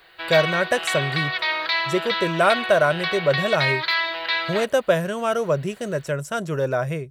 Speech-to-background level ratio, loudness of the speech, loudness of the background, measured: 1.0 dB, −23.0 LKFS, −24.0 LKFS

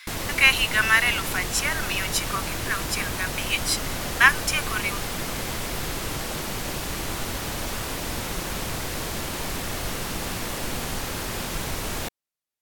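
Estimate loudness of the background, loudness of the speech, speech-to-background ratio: −29.5 LKFS, −23.0 LKFS, 6.5 dB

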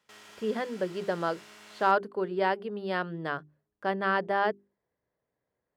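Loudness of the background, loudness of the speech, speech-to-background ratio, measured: −50.5 LKFS, −30.5 LKFS, 20.0 dB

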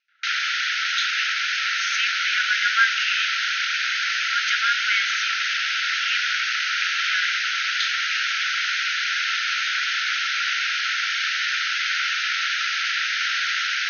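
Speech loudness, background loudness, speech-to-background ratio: −26.0 LKFS, −22.0 LKFS, −4.0 dB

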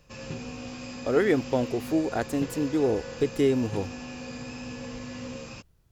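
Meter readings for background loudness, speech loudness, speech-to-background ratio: −38.5 LKFS, −27.0 LKFS, 11.5 dB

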